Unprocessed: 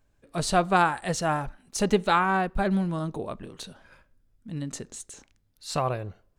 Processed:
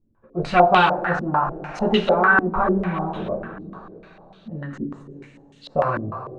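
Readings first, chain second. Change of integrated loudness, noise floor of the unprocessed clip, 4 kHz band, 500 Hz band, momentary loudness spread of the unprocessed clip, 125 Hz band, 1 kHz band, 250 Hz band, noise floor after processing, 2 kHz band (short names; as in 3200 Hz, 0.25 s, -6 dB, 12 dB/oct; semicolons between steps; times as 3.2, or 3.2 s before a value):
+6.0 dB, -67 dBFS, +4.5 dB, +7.0 dB, 18 LU, +2.5 dB, +6.5 dB, +4.0 dB, -53 dBFS, +9.5 dB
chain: two-slope reverb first 0.22 s, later 3.2 s, from -18 dB, DRR -6 dB; stepped low-pass 6.7 Hz 290–3200 Hz; gain -3.5 dB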